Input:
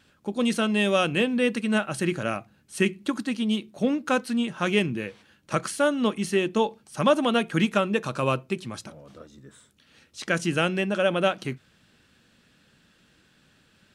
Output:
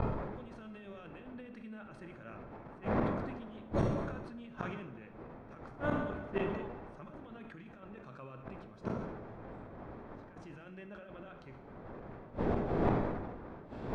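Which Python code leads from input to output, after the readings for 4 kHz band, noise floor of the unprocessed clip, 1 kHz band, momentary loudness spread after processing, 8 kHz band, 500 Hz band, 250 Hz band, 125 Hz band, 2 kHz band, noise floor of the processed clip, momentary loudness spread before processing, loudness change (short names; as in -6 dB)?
-28.0 dB, -62 dBFS, -12.0 dB, 17 LU, under -30 dB, -13.5 dB, -13.5 dB, -7.0 dB, -18.5 dB, -53 dBFS, 11 LU, -14.5 dB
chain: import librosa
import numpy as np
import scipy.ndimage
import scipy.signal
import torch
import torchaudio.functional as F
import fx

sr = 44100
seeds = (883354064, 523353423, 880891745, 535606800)

y = fx.dmg_wind(x, sr, seeds[0], corner_hz=550.0, level_db=-26.0)
y = fx.notch(y, sr, hz=2900.0, q=16.0)
y = fx.dynamic_eq(y, sr, hz=1600.0, q=0.88, threshold_db=-40.0, ratio=4.0, max_db=5)
y = fx.over_compress(y, sr, threshold_db=-23.0, ratio=-0.5)
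y = fx.gate_flip(y, sr, shuts_db=-22.0, range_db=-29)
y = fx.spacing_loss(y, sr, db_at_10k=22)
y = fx.rev_plate(y, sr, seeds[1], rt60_s=1.6, hf_ratio=0.75, predelay_ms=0, drr_db=7.0)
y = fx.sustainer(y, sr, db_per_s=39.0)
y = F.gain(torch.from_numpy(y), 3.5).numpy()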